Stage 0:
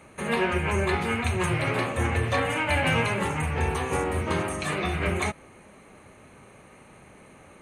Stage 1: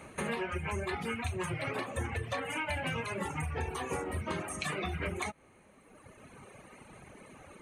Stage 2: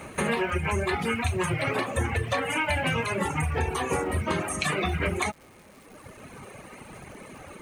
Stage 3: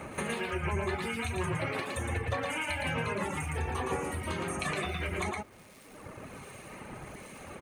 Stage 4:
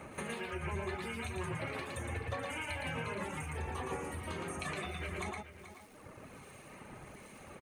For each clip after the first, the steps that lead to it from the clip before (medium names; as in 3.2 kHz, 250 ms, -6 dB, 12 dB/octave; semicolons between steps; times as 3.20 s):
reverb removal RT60 1.7 s; compression, threshold -34 dBFS, peak gain reduction 12 dB; trim +1.5 dB
crackle 480 per s -54 dBFS; trim +8.5 dB
delay 114 ms -3.5 dB; harmonic tremolo 1.3 Hz, depth 50%, crossover 2.2 kHz; compression 1.5:1, threshold -39 dBFS, peak gain reduction 6.5 dB
delay 431 ms -13 dB; trim -6.5 dB